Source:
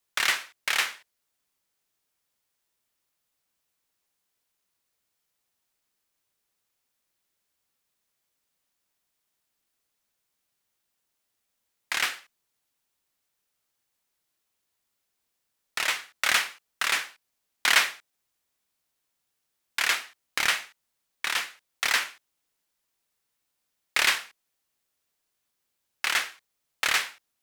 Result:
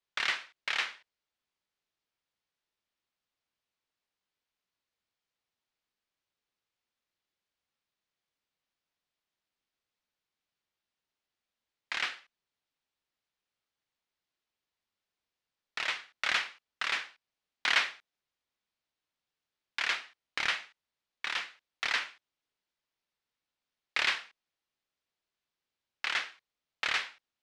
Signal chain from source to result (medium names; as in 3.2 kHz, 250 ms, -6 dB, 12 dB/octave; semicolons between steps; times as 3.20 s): Chebyshev low-pass 4 kHz, order 2; trim -5.5 dB